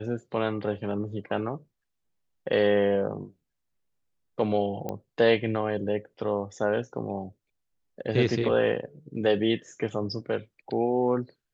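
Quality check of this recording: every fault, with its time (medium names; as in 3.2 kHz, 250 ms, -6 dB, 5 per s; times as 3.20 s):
4.89 s: pop -19 dBFS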